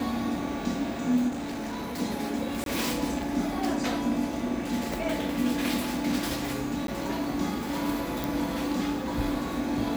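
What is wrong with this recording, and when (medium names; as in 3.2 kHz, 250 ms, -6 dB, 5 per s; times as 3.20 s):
1.28–2.00 s: clipped -30.5 dBFS
2.64–2.66 s: dropout 22 ms
6.87–6.88 s: dropout 12 ms
8.24 s: pop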